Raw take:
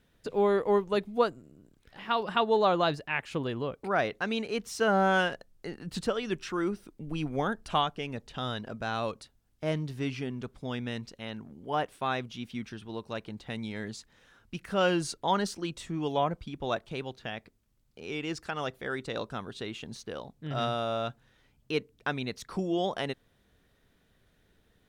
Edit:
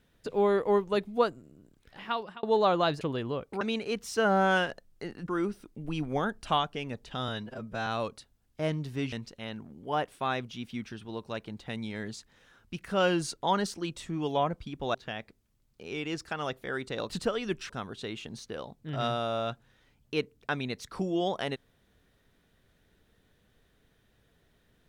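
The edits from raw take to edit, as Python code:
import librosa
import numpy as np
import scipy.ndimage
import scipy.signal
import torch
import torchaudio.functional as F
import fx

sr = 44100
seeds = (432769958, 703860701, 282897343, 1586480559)

y = fx.edit(x, sr, fx.fade_out_span(start_s=2.0, length_s=0.43),
    fx.cut(start_s=3.01, length_s=0.31),
    fx.cut(start_s=3.92, length_s=0.32),
    fx.move(start_s=5.91, length_s=0.6, to_s=19.27),
    fx.stretch_span(start_s=8.51, length_s=0.39, factor=1.5),
    fx.cut(start_s=10.16, length_s=0.77),
    fx.cut(start_s=16.75, length_s=0.37), tone=tone)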